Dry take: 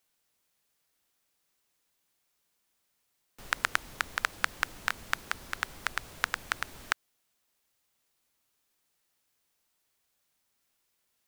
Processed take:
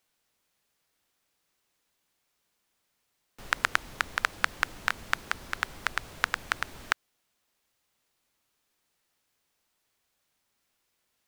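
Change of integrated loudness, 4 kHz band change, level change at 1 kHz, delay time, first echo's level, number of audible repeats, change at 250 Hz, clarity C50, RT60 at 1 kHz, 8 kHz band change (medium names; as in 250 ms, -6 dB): +2.5 dB, +1.5 dB, +3.0 dB, no echo, no echo, no echo, +3.0 dB, no reverb, no reverb, -0.5 dB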